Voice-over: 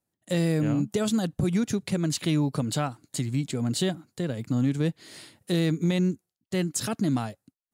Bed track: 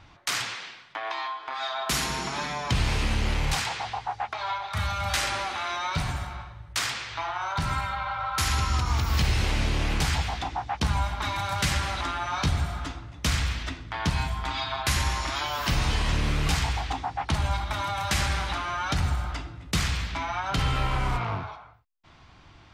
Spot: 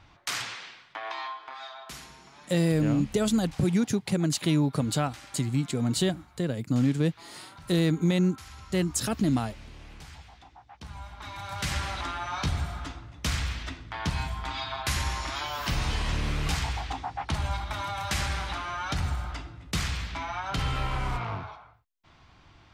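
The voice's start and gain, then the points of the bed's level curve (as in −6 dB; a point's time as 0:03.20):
2.20 s, +0.5 dB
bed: 0:01.31 −3.5 dB
0:02.18 −21 dB
0:10.66 −21 dB
0:11.78 −3.5 dB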